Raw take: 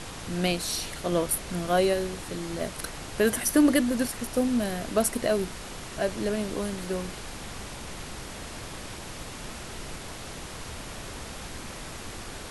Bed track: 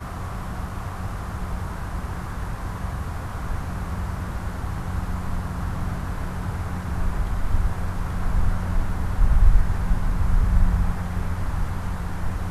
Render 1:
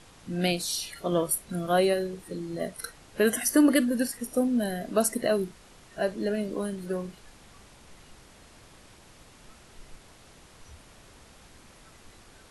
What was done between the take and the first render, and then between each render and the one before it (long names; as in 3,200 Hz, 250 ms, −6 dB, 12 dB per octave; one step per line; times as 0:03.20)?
noise reduction from a noise print 14 dB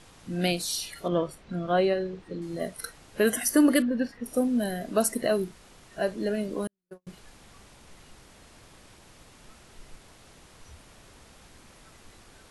0:01.08–0:02.42: high-frequency loss of the air 150 metres
0:03.82–0:04.26: high-frequency loss of the air 240 metres
0:06.67–0:07.07: noise gate −27 dBFS, range −51 dB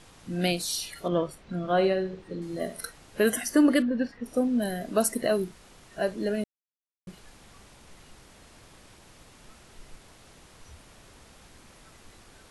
0:01.57–0:02.87: flutter between parallel walls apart 11.8 metres, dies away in 0.33 s
0:03.41–0:04.62: high-frequency loss of the air 51 metres
0:06.44–0:07.07: silence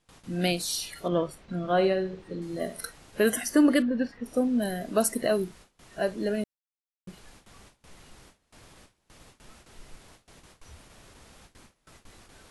noise gate with hold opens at −42 dBFS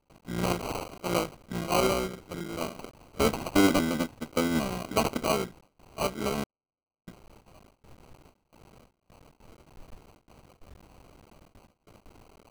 sub-harmonics by changed cycles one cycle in 3, muted
decimation without filtering 25×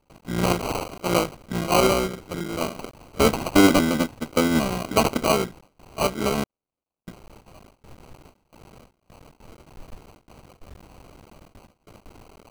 level +6.5 dB